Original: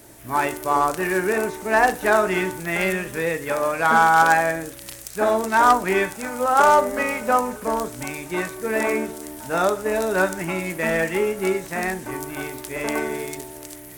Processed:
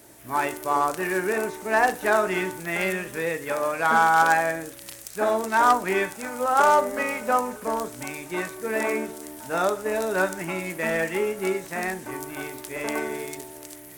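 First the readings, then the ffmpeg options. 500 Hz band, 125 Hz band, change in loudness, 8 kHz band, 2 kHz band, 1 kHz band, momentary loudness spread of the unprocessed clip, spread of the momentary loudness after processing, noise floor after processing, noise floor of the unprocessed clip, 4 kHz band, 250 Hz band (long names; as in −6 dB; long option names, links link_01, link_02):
−3.5 dB, −5.5 dB, −3.0 dB, −3.0 dB, −3.0 dB, −3.0 dB, 14 LU, 14 LU, −43 dBFS, −40 dBFS, −3.0 dB, −4.0 dB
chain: -af "lowshelf=frequency=100:gain=-9,volume=-3dB"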